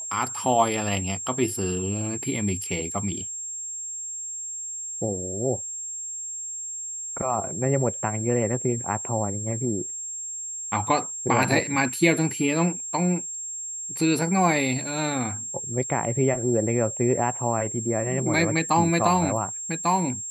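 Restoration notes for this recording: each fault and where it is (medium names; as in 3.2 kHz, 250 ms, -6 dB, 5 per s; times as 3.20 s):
whine 7.5 kHz -31 dBFS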